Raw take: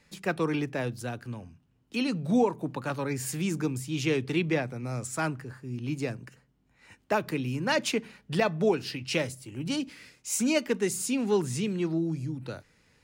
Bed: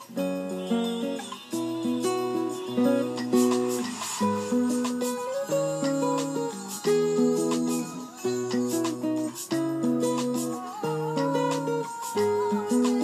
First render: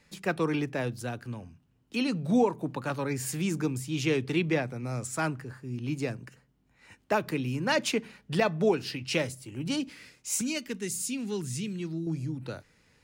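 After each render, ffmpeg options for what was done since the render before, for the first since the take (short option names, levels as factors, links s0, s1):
-filter_complex "[0:a]asettb=1/sr,asplit=3[s0][s1][s2];[s0]atrim=end=10.414[s3];[s1]atrim=start=10.41:end=12.07,asetpts=PTS-STARTPTS,afade=t=in:d=0.004:c=qsin,afade=t=out:st=1.656:d=0.004:c=qsin,equalizer=f=720:t=o:w=2.5:g=-13.5[s4];[s2]atrim=start=12.066[s5];[s3][s4]acrossfade=d=0.004:c1=hsin:c2=qsin[s6];[s6][s5]acrossfade=d=0.004:c1=qsin:c2=hsin"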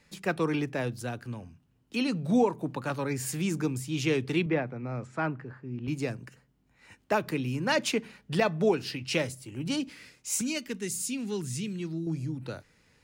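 -filter_complex "[0:a]asettb=1/sr,asplit=3[s0][s1][s2];[s0]atrim=end=4.464[s3];[s1]atrim=start=4.46:end=5.88,asetpts=PTS-STARTPTS,afade=t=in:d=0.004:c=qsin,afade=t=out:st=1.416:d=0.004:c=qsin,highpass=110,lowpass=2200[s4];[s2]atrim=start=5.876[s5];[s3][s4]acrossfade=d=0.004:c1=hsin:c2=qsin[s6];[s6][s5]acrossfade=d=0.004:c1=qsin:c2=hsin"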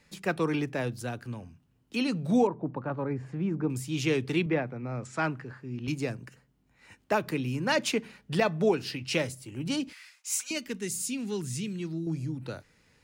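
-filter_complex "[0:a]asettb=1/sr,asplit=3[s0][s1][s2];[s0]atrim=end=2.474[s3];[s1]atrim=start=2.47:end=3.7,asetpts=PTS-STARTPTS,afade=t=in:d=0.004:c=qsin,afade=t=out:st=1.226:d=0.004:c=qsin,lowpass=1200[s4];[s2]atrim=start=3.696[s5];[s3][s4]acrossfade=d=0.004:c1=hsin:c2=qsin[s6];[s6][s5]acrossfade=d=0.004:c1=qsin:c2=hsin,asettb=1/sr,asplit=3[s7][s8][s9];[s7]atrim=end=5.054[s10];[s8]atrim=start=5.05:end=5.92,asetpts=PTS-STARTPTS,afade=t=in:d=0.004:c=qsin,afade=t=out:st=0.866:d=0.004:c=qsin,equalizer=f=6900:w=0.45:g=12[s11];[s9]atrim=start=5.916[s12];[s10][s11]acrossfade=d=0.004:c1=hsin:c2=qsin[s13];[s13][s12]acrossfade=d=0.004:c1=qsin:c2=hsin,asettb=1/sr,asplit=3[s14][s15][s16];[s14]atrim=end=9.934[s17];[s15]atrim=start=9.93:end=10.51,asetpts=PTS-STARTPTS,afade=t=in:d=0.004:c=qsin,afade=t=out:st=0.576:d=0.004:c=qsin,highpass=f=930:w=0.5412,highpass=f=930:w=1.3066[s18];[s16]atrim=start=10.506[s19];[s17][s18]acrossfade=d=0.004:c1=hsin:c2=qsin[s20];[s20][s19]acrossfade=d=0.004:c1=qsin:c2=hsin"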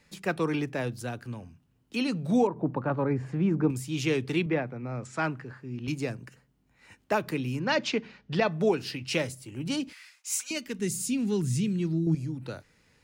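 -filter_complex "[0:a]asettb=1/sr,asplit=3[s0][s1][s2];[s0]atrim=end=7.594[s3];[s1]atrim=start=7.59:end=8.51,asetpts=PTS-STARTPTS,afade=t=in:d=0.004:c=qsin,afade=t=out:st=0.916:d=0.004:c=qsin,lowpass=f=5700:w=0.5412,lowpass=f=5700:w=1.3066[s4];[s2]atrim=start=8.506[s5];[s3][s4]acrossfade=d=0.004:c1=hsin:c2=qsin[s6];[s6][s5]acrossfade=d=0.004:c1=qsin:c2=hsin,asettb=1/sr,asplit=3[s7][s8][s9];[s7]atrim=end=10.794[s10];[s8]atrim=start=10.79:end=12.15,asetpts=PTS-STARTPTS,afade=t=in:d=0.004:c=qsin,afade=t=out:st=1.356:d=0.004:c=qsin,lowshelf=f=330:g=9.5[s11];[s9]atrim=start=12.146[s12];[s10][s11]acrossfade=d=0.004:c1=hsin:c2=qsin[s13];[s13][s12]acrossfade=d=0.004:c1=qsin:c2=hsin,asplit=3[s14][s15][s16];[s14]atrim=end=2.562[s17];[s15]atrim=start=2.558:end=3.712,asetpts=PTS-STARTPTS,volume=1.68[s18];[s16]atrim=start=3.708[s19];[s17][s18]acrossfade=d=0.004:c1=hsin:c2=hsin[s20];[s20][s19]acrossfade=d=0.004:c1=hsin:c2=hsin"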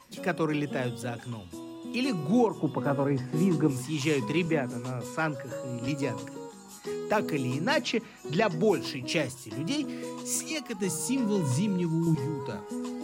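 -filter_complex "[1:a]volume=0.251[s0];[0:a][s0]amix=inputs=2:normalize=0"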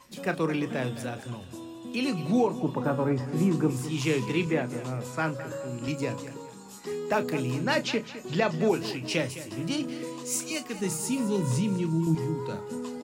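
-filter_complex "[0:a]asplit=2[s0][s1];[s1]adelay=31,volume=0.251[s2];[s0][s2]amix=inputs=2:normalize=0,aecho=1:1:210|420|630|840:0.2|0.0758|0.0288|0.0109"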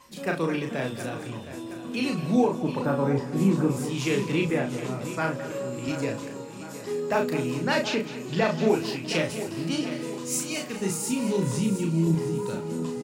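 -filter_complex "[0:a]asplit=2[s0][s1];[s1]adelay=36,volume=0.631[s2];[s0][s2]amix=inputs=2:normalize=0,aecho=1:1:716|1432|2148|2864|3580:0.237|0.116|0.0569|0.0279|0.0137"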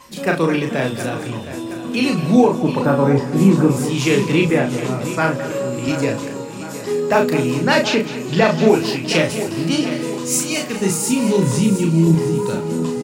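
-af "volume=2.99,alimiter=limit=0.794:level=0:latency=1"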